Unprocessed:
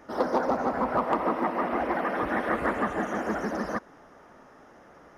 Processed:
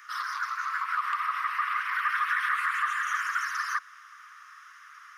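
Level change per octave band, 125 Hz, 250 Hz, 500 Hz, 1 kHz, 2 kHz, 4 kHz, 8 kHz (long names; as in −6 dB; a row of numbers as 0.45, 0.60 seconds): below −40 dB, below −40 dB, below −40 dB, −0.5 dB, +6.5 dB, +6.5 dB, +8.0 dB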